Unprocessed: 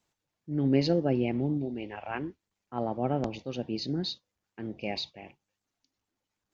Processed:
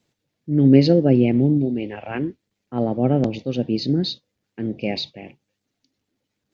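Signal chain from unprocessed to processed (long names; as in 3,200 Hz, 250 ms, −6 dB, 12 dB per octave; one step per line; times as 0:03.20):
graphic EQ with 10 bands 125 Hz +9 dB, 250 Hz +8 dB, 500 Hz +7 dB, 1,000 Hz −4 dB, 2,000 Hz +4 dB, 4,000 Hz +5 dB
level +2 dB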